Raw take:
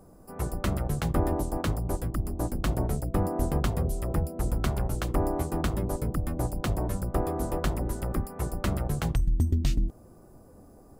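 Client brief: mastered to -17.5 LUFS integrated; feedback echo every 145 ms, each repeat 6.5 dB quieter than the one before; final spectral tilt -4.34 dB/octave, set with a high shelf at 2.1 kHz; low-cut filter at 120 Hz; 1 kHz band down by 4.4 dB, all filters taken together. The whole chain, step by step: high-pass 120 Hz; peaking EQ 1 kHz -8 dB; treble shelf 2.1 kHz +7.5 dB; feedback delay 145 ms, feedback 47%, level -6.5 dB; trim +13.5 dB

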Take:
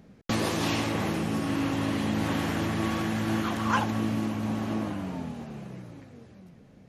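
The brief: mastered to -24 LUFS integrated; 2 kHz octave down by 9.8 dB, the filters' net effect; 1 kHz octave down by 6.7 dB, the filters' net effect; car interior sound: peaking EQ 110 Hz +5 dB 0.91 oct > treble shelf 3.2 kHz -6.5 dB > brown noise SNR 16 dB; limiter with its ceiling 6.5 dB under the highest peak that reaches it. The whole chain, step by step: peaking EQ 1 kHz -5.5 dB; peaking EQ 2 kHz -9 dB; peak limiter -22 dBFS; peaking EQ 110 Hz +5 dB 0.91 oct; treble shelf 3.2 kHz -6.5 dB; brown noise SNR 16 dB; trim +6.5 dB

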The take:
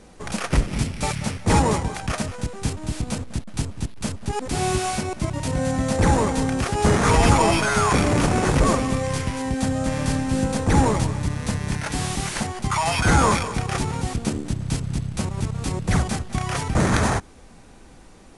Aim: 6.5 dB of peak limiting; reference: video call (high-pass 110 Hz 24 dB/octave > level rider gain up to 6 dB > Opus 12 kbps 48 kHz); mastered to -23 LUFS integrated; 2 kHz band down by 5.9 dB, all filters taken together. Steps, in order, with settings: peaking EQ 2 kHz -8 dB; peak limiter -11.5 dBFS; high-pass 110 Hz 24 dB/octave; level rider gain up to 6 dB; trim +2 dB; Opus 12 kbps 48 kHz

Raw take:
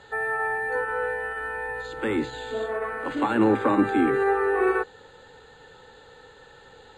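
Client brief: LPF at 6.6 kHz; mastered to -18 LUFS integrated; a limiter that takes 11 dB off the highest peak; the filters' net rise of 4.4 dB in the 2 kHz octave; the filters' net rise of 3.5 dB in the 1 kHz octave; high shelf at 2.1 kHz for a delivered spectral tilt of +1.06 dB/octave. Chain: low-pass 6.6 kHz; peaking EQ 1 kHz +4.5 dB; peaking EQ 2 kHz +8 dB; treble shelf 2.1 kHz -8.5 dB; trim +9 dB; peak limiter -10 dBFS

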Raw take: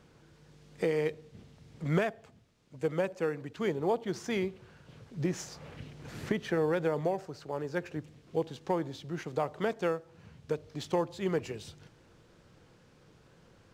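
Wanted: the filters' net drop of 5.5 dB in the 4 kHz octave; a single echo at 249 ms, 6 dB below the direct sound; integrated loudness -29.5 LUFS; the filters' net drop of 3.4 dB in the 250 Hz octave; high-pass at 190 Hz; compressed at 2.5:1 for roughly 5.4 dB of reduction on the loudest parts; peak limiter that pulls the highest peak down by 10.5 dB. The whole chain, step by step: high-pass 190 Hz; peaking EQ 250 Hz -3 dB; peaking EQ 4 kHz -7.5 dB; compression 2.5:1, threshold -34 dBFS; peak limiter -32.5 dBFS; delay 249 ms -6 dB; trim +14 dB

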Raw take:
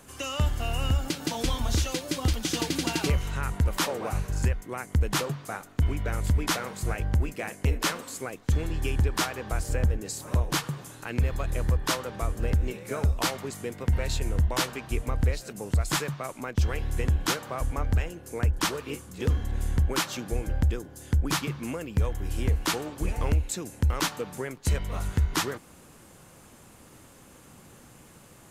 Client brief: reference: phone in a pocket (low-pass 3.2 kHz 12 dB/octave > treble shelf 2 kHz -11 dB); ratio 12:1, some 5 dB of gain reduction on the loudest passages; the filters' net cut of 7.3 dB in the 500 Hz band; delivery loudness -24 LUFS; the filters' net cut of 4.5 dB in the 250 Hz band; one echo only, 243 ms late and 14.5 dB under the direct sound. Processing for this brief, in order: peaking EQ 250 Hz -4 dB; peaking EQ 500 Hz -7 dB; compression 12:1, threshold -24 dBFS; low-pass 3.2 kHz 12 dB/octave; treble shelf 2 kHz -11 dB; delay 243 ms -14.5 dB; trim +10 dB

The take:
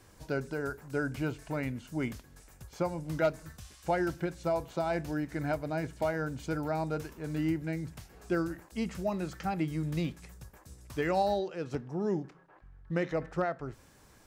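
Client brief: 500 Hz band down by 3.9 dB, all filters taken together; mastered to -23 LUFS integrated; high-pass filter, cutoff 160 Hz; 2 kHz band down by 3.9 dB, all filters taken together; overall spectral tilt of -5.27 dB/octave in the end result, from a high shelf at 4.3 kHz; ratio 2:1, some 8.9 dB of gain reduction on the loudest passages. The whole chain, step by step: high-pass 160 Hz; peaking EQ 500 Hz -5 dB; peaking EQ 2 kHz -6.5 dB; treble shelf 4.3 kHz +7.5 dB; compression 2:1, threshold -43 dBFS; trim +21 dB

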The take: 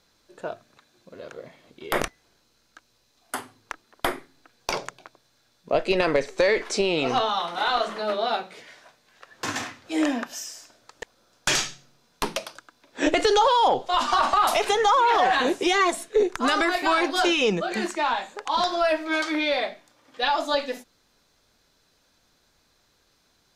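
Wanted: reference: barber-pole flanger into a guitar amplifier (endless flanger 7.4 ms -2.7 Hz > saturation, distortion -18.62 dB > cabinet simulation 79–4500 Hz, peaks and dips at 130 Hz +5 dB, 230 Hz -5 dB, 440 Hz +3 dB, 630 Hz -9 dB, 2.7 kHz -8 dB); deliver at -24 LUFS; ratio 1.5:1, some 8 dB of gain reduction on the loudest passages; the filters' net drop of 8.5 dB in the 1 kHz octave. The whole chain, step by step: peaking EQ 1 kHz -9 dB; compression 1.5:1, threshold -41 dBFS; endless flanger 7.4 ms -2.7 Hz; saturation -26.5 dBFS; cabinet simulation 79–4500 Hz, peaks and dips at 130 Hz +5 dB, 230 Hz -5 dB, 440 Hz +3 dB, 630 Hz -9 dB, 2.7 kHz -8 dB; trim +15.5 dB

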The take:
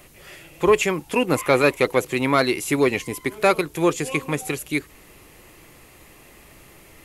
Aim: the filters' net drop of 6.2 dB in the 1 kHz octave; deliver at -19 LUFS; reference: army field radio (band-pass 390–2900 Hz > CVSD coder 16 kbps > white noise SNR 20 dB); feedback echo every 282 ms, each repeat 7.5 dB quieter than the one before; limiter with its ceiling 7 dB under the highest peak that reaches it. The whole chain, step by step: peaking EQ 1 kHz -8 dB; peak limiter -14 dBFS; band-pass 390–2900 Hz; feedback delay 282 ms, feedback 42%, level -7.5 dB; CVSD coder 16 kbps; white noise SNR 20 dB; trim +11 dB

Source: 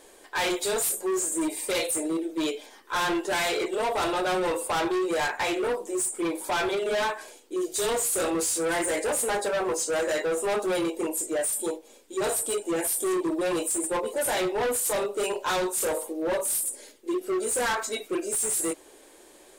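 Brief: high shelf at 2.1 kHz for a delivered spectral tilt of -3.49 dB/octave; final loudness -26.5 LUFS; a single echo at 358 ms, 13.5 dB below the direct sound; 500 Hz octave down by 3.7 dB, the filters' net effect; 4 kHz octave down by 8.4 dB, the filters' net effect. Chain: peaking EQ 500 Hz -4.5 dB; treble shelf 2.1 kHz -5 dB; peaking EQ 4 kHz -6 dB; delay 358 ms -13.5 dB; trim +4.5 dB

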